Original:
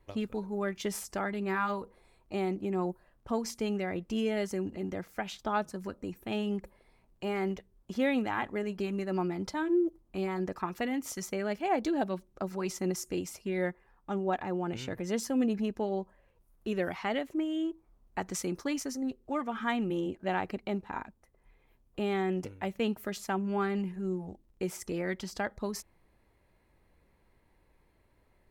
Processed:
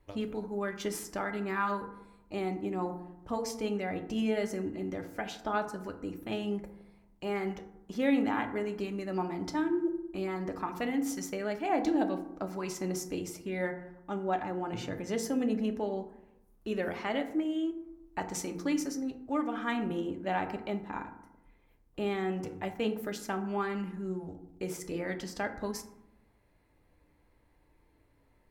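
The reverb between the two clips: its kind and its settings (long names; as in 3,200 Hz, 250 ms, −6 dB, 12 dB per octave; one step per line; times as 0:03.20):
feedback delay network reverb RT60 0.85 s, low-frequency decay 1.4×, high-frequency decay 0.4×, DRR 5.5 dB
level −1.5 dB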